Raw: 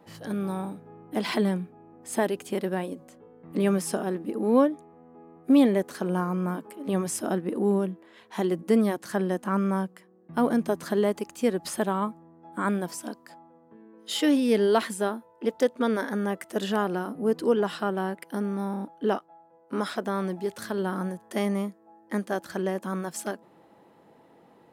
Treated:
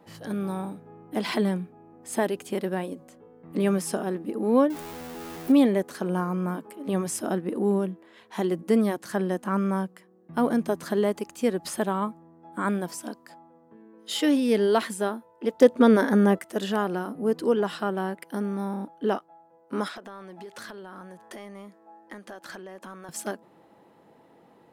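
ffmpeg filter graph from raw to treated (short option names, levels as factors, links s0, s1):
-filter_complex "[0:a]asettb=1/sr,asplit=3[s0][s1][s2];[s0]atrim=end=4.704[s3];[s1]atrim=start=4.7:end=5.52,asetpts=PTS-STARTPTS,afade=t=in:d=0.004:c=qsin,afade=t=out:st=0.816:d=0.004:c=qsin,aeval=exprs='val(0)+0.5*0.0178*sgn(val(0))':c=same,highshelf=f=12000:g=11.5[s4];[s2]atrim=start=5.516[s5];[s3][s4]acrossfade=d=0.004:c1=hsin:c2=qsin[s6];[s6][s5]acrossfade=d=0.004:c1=qsin:c2=hsin,asettb=1/sr,asplit=3[s7][s8][s9];[s7]atrim=end=15.614[s10];[s8]atrim=start=15.61:end=16.39,asetpts=PTS-STARTPTS,afade=t=in:d=0.004:c=qsin,afade=t=out:st=0.776:d=0.004:c=qsin,acontrast=80,tiltshelf=f=630:g=3[s11];[s9]atrim=start=16.386[s12];[s10][s11]acrossfade=d=0.004:c1=hsin:c2=qsin[s13];[s13][s12]acrossfade=d=0.004:c1=qsin:c2=hsin,asettb=1/sr,asplit=3[s14][s15][s16];[s14]atrim=end=19.884[s17];[s15]atrim=start=19.88:end=23.09,asetpts=PTS-STARTPTS,afade=t=in:d=0.004:c=qsin,afade=t=out:st=3.206:d=0.004:c=qsin,acompressor=threshold=0.0126:ratio=16:attack=3.2:release=140:knee=1:detection=peak,asplit=2[s18][s19];[s19]highpass=f=720:p=1,volume=3.55,asoftclip=type=tanh:threshold=0.0447[s20];[s18][s20]amix=inputs=2:normalize=0,lowpass=f=4400:p=1,volume=0.501[s21];[s16]atrim=start=23.086[s22];[s17][s21]acrossfade=d=0.004:c1=hsin:c2=qsin[s23];[s23][s22]acrossfade=d=0.004:c1=qsin:c2=hsin"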